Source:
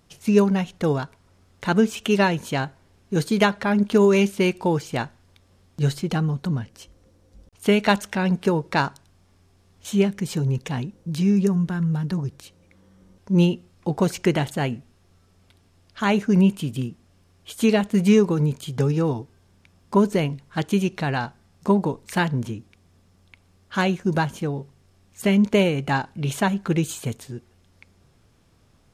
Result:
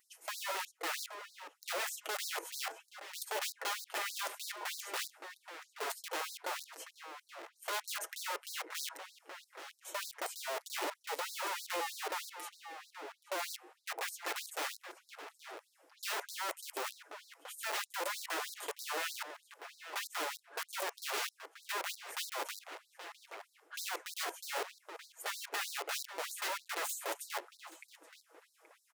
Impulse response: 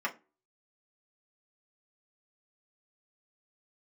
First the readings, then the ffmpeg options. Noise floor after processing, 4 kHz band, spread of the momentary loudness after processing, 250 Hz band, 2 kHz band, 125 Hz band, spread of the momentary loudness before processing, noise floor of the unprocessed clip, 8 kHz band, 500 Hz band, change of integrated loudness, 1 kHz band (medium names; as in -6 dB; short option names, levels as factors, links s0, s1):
-74 dBFS, -7.0 dB, 14 LU, -37.0 dB, -10.5 dB, under -40 dB, 12 LU, -59 dBFS, -3.0 dB, -21.5 dB, -17.5 dB, -12.0 dB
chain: -filter_complex "[0:a]equalizer=f=4000:t=o:w=1.8:g=-14.5,aecho=1:1:6.2:0.8,areverse,acompressor=threshold=0.0355:ratio=5,areverse,aeval=exprs='(mod(35.5*val(0)+1,2)-1)/35.5':c=same,asplit=2[s0][s1];[s1]adelay=826,lowpass=f=2700:p=1,volume=0.266,asplit=2[s2][s3];[s3]adelay=826,lowpass=f=2700:p=1,volume=0.24,asplit=2[s4][s5];[s5]adelay=826,lowpass=f=2700:p=1,volume=0.24[s6];[s0][s2][s4][s6]amix=inputs=4:normalize=0,asoftclip=type=tanh:threshold=0.02,asplit=2[s7][s8];[1:a]atrim=start_sample=2205[s9];[s8][s9]afir=irnorm=-1:irlink=0,volume=0.119[s10];[s7][s10]amix=inputs=2:normalize=0,afftfilt=real='re*gte(b*sr/1024,280*pow(3900/280,0.5+0.5*sin(2*PI*3.2*pts/sr)))':imag='im*gte(b*sr/1024,280*pow(3900/280,0.5+0.5*sin(2*PI*3.2*pts/sr)))':win_size=1024:overlap=0.75,volume=1.26"